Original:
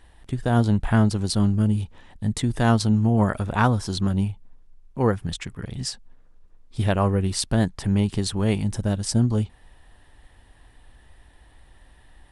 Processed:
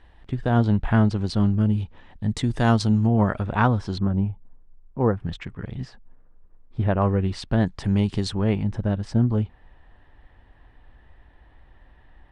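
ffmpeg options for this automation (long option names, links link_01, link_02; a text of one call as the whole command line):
ffmpeg -i in.wav -af "asetnsamples=nb_out_samples=441:pad=0,asendcmd='2.3 lowpass f 6200;3.07 lowpass f 3200;3.98 lowpass f 1300;5.2 lowpass f 2600;5.85 lowpass f 1600;7.02 lowpass f 2900;7.66 lowpass f 5400;8.34 lowpass f 2300',lowpass=3500" out.wav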